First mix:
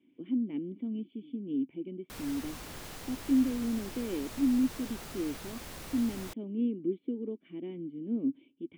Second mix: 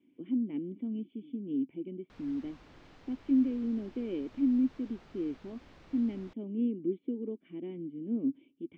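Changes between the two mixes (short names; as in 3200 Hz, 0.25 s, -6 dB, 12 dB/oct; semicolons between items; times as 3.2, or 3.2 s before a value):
background -10.5 dB; master: add air absorption 190 m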